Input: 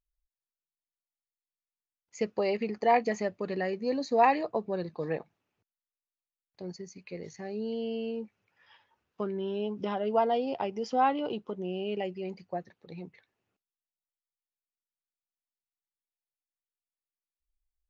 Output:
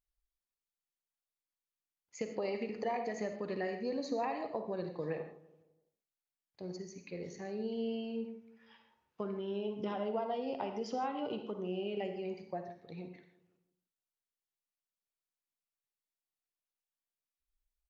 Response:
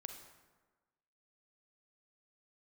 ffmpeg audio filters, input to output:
-filter_complex "[0:a]acompressor=threshold=-30dB:ratio=6,asplit=2[link_01][link_02];[link_02]adelay=167,lowpass=frequency=1200:poles=1,volume=-17.5dB,asplit=2[link_03][link_04];[link_04]adelay=167,lowpass=frequency=1200:poles=1,volume=0.46,asplit=2[link_05][link_06];[link_06]adelay=167,lowpass=frequency=1200:poles=1,volume=0.46,asplit=2[link_07][link_08];[link_08]adelay=167,lowpass=frequency=1200:poles=1,volume=0.46[link_09];[link_01][link_03][link_05][link_07][link_09]amix=inputs=5:normalize=0[link_10];[1:a]atrim=start_sample=2205,atrim=end_sample=6615,asetrate=39690,aresample=44100[link_11];[link_10][link_11]afir=irnorm=-1:irlink=0,volume=1dB"

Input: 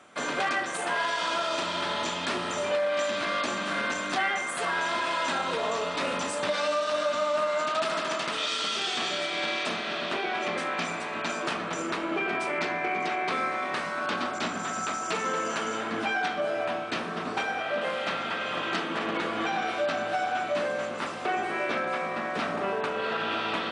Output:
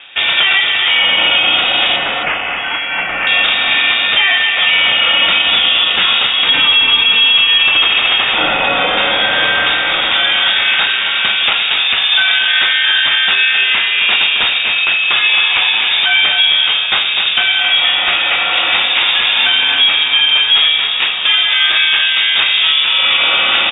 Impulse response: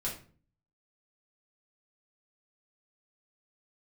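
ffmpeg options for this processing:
-filter_complex "[0:a]asettb=1/sr,asplit=3[link_01][link_02][link_03];[link_01]atrim=end=1.964[link_04];[link_02]atrim=start=1.96:end=3.27,asetpts=PTS-STARTPTS,afade=type=in:duration=0.004:curve=qsin,afade=type=out:start_time=1.306:duration=0.004:curve=qsin,highpass=1400[link_05];[link_03]atrim=start=3.266[link_06];[link_04][link_05]acrossfade=duration=0.004:curve1=hsin:curve2=qsin[link_07];[link_07][link_06]acrossfade=duration=0.004:curve1=qsin:curve2=hsin,aecho=1:1:268:0.355,lowpass=frequency=3300:width_type=q:width=0.5098,lowpass=frequency=3300:width_type=q:width=0.6013,lowpass=frequency=3300:width_type=q:width=0.9,lowpass=frequency=3300:width_type=q:width=2.563,afreqshift=-3900,alimiter=level_in=18.5dB:limit=-1dB:release=50:level=0:latency=1,volume=-1dB"

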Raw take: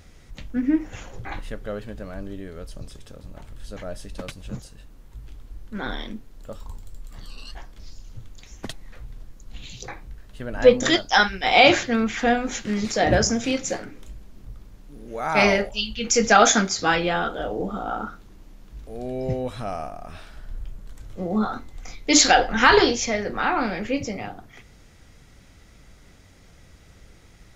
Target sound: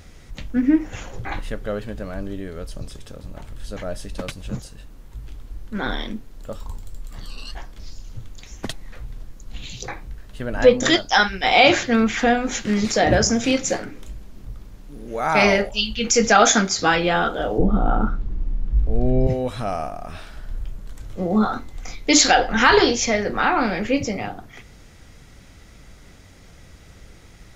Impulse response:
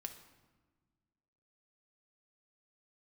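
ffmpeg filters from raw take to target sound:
-filter_complex "[0:a]asettb=1/sr,asplit=3[link_01][link_02][link_03];[link_01]atrim=end=17.584[link_04];[link_02]atrim=start=17.58:end=19.27,asetpts=PTS-STARTPTS,afade=type=in:duration=0.004:curve=qsin,afade=type=out:start_time=1.686:duration=0.004:curve=qsin,aemphasis=mode=reproduction:type=riaa[link_05];[link_03]atrim=start=19.266[link_06];[link_04][link_05]acrossfade=duration=0.004:curve1=hsin:curve2=qsin[link_07];[link_07][link_06]acrossfade=duration=0.004:curve1=qsin:curve2=hsin,asplit=2[link_08][link_09];[link_09]alimiter=limit=-12.5dB:level=0:latency=1:release=312,volume=2dB[link_10];[link_08][link_10]amix=inputs=2:normalize=0,volume=-2.5dB"

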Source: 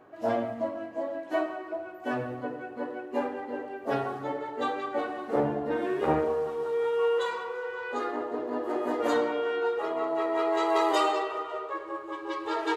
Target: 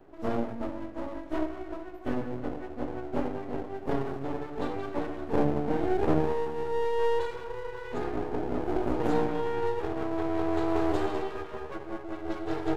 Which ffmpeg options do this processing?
ffmpeg -i in.wav -filter_complex "[0:a]highpass=frequency=75:width=0.5412,highpass=frequency=75:width=1.3066,lowshelf=frequency=520:width_type=q:width=1.5:gain=9.5,acrossover=split=600|910[link_01][link_02][link_03];[link_03]alimiter=level_in=5dB:limit=-24dB:level=0:latency=1:release=209,volume=-5dB[link_04];[link_01][link_02][link_04]amix=inputs=3:normalize=0,aeval=exprs='max(val(0),0)':channel_layout=same,volume=-3.5dB" out.wav

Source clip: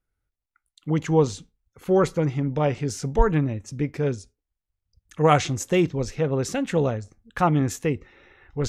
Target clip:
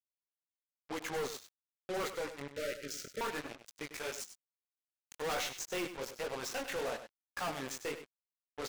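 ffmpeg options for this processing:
ffmpeg -i in.wav -filter_complex "[0:a]acrossover=split=7400[link_01][link_02];[link_02]acompressor=threshold=-57dB:ratio=4:attack=1:release=60[link_03];[link_01][link_03]amix=inputs=2:normalize=0,asettb=1/sr,asplit=3[link_04][link_05][link_06];[link_04]atrim=end=3.934[link_07];[link_05]atrim=start=3.93:end=5.22,asetpts=PTS-STARTPTS,afade=type=in:duration=0.004:curve=qsin,afade=type=out:start_time=1.286:duration=0.004:curve=qsin,aemphasis=mode=production:type=riaa[link_08];[link_06]atrim=start=5.216[link_09];[link_07][link_08]acrossfade=duration=0.004:curve1=hsin:curve2=qsin[link_10];[link_10][link_09]acrossfade=duration=0.004:curve1=qsin:curve2=hsin,agate=range=-33dB:threshold=-42dB:ratio=3:detection=peak,highpass=630,acontrast=44,aeval=exprs='(mod(1.68*val(0)+1,2)-1)/1.68':channel_layout=same,flanger=delay=16:depth=7.8:speed=1.1,acrusher=bits=4:mix=0:aa=0.5,aeval=exprs='(tanh(63.1*val(0)+0.1)-tanh(0.1))/63.1':channel_layout=same,asettb=1/sr,asplit=3[link_11][link_12][link_13];[link_11]atrim=end=2.484[link_14];[link_12]atrim=start=2.48:end=3.21,asetpts=PTS-STARTPTS,afade=type=in:duration=0.004:curve=qsin,afade=type=out:start_time=0.726:duration=0.004:curve=qsin,asuperstop=centerf=900:order=20:qfactor=1.5[link_15];[link_13]atrim=start=3.206[link_16];[link_14][link_15]acrossfade=duration=0.004:curve1=hsin:curve2=qsin[link_17];[link_17][link_16]acrossfade=duration=0.004:curve1=qsin:curve2=hsin,aecho=1:1:98:0.282,volume=2dB" out.wav

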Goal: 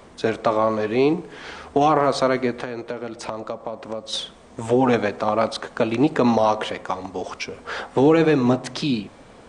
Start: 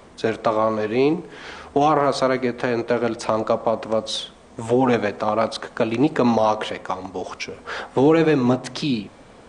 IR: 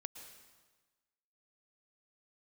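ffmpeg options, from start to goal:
-filter_complex "[0:a]asettb=1/sr,asplit=3[link_01][link_02][link_03];[link_01]atrim=end=2.614[link_04];[link_02]atrim=start=2.61:end=4.13,asetpts=PTS-STARTPTS,afade=type=in:duration=0.004:curve=qsin,afade=type=out:start_time=1.516:duration=0.004:curve=qsin,acompressor=threshold=-28dB:ratio=4[link_05];[link_03]atrim=start=4.126[link_06];[link_04][link_05]acrossfade=duration=0.004:curve1=hsin:curve2=qsin[link_07];[link_07][link_06]acrossfade=duration=0.004:curve1=qsin:curve2=hsin"

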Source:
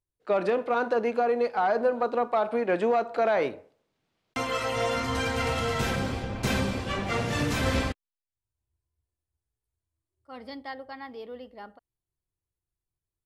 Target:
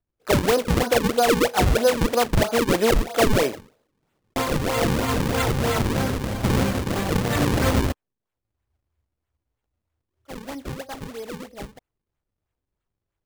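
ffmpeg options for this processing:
ffmpeg -i in.wav -af "acrusher=samples=38:mix=1:aa=0.000001:lfo=1:lforange=60.8:lforate=3.1,volume=6dB" out.wav

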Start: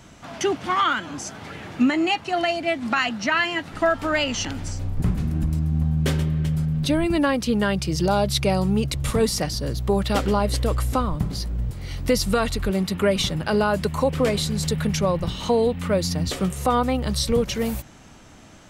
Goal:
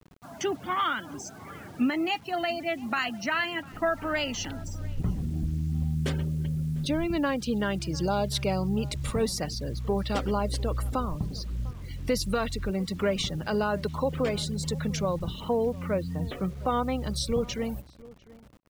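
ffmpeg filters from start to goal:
ffmpeg -i in.wav -filter_complex "[0:a]asettb=1/sr,asplit=3[link_01][link_02][link_03];[link_01]atrim=end=15.404[link_04];[link_02]atrim=start=15.4:end=16.66,asetpts=PTS-STARTPTS,afade=type=in:duration=0.004:curve=qsin,afade=type=out:start_time=1.256:duration=0.004:curve=qsin,lowpass=frequency=3100:width=0.5412,lowpass=frequency=3100:width=1.3066[link_05];[link_03]atrim=start=16.656[link_06];[link_04][link_05]acrossfade=duration=0.004:curve1=hsin:curve2=qsin[link_07];[link_07][link_06]acrossfade=duration=0.004:curve1=qsin:curve2=hsin,afftfilt=real='re*gte(hypot(re,im),0.02)':imag='im*gte(hypot(re,im),0.02)':win_size=1024:overlap=0.75,acrusher=bits=7:mix=0:aa=0.000001,asplit=2[link_08][link_09];[link_09]adelay=699.7,volume=-21dB,highshelf=frequency=4000:gain=-15.7[link_10];[link_08][link_10]amix=inputs=2:normalize=0,volume=-6.5dB" out.wav

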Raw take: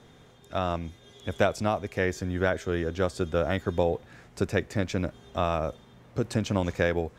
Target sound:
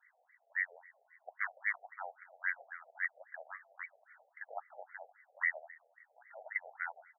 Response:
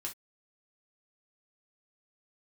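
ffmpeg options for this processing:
-filter_complex "[0:a]asplit=3[link_01][link_02][link_03];[link_01]bandpass=frequency=730:width_type=q:width=8,volume=0dB[link_04];[link_02]bandpass=frequency=1090:width_type=q:width=8,volume=-6dB[link_05];[link_03]bandpass=frequency=2440:width_type=q:width=8,volume=-9dB[link_06];[link_04][link_05][link_06]amix=inputs=3:normalize=0,lowpass=frequency=2600:width_type=q:width=0.5098,lowpass=frequency=2600:width_type=q:width=0.6013,lowpass=frequency=2600:width_type=q:width=0.9,lowpass=frequency=2600:width_type=q:width=2.563,afreqshift=-3100,asplit=2[link_07][link_08];[link_08]aeval=exprs='(mod(15*val(0)+1,2)-1)/15':channel_layout=same,volume=-5dB[link_09];[link_07][link_09]amix=inputs=2:normalize=0,aecho=1:1:193|386|579|772:0.0631|0.0379|0.0227|0.0136,afftfilt=real='re*between(b*sr/1024,580*pow(1600/580,0.5+0.5*sin(2*PI*3.7*pts/sr))/1.41,580*pow(1600/580,0.5+0.5*sin(2*PI*3.7*pts/sr))*1.41)':imag='im*between(b*sr/1024,580*pow(1600/580,0.5+0.5*sin(2*PI*3.7*pts/sr))/1.41,580*pow(1600/580,0.5+0.5*sin(2*PI*3.7*pts/sr))*1.41)':win_size=1024:overlap=0.75,volume=9dB"

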